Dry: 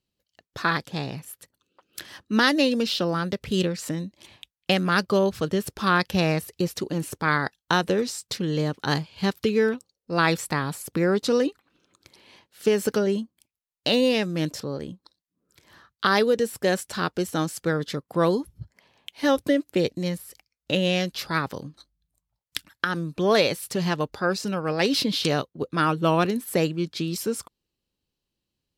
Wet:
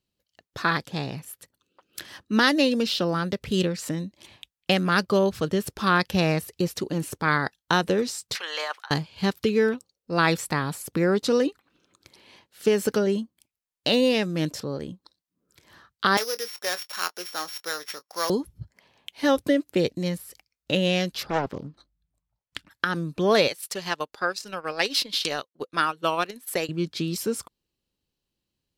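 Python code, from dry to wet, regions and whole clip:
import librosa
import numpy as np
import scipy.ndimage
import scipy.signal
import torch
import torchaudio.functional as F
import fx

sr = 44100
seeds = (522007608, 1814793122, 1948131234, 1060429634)

y = fx.chain(x, sr, fx.highpass(hz=730.0, slope=24),
    fx.over_compress(threshold_db=-37.0, ratio=-0.5),
    fx.peak_eq(hz=1400.0, db=9.0, octaves=2.6), at=(8.35, 8.91))
y = fx.chain(y, sr, fx.sample_sort(block=8),
    fx.highpass(hz=880.0, slope=12),
    fx.doubler(ms=23.0, db=-13), at=(16.17, 18.3))
y = fx.chain(y, sr, fx.lowpass(hz=2100.0, slope=6),
    fx.doppler_dist(depth_ms=0.63), at=(21.23, 22.71))
y = fx.chain(y, sr, fx.highpass(hz=920.0, slope=6),
    fx.transient(attack_db=4, sustain_db=-10), at=(23.48, 26.69))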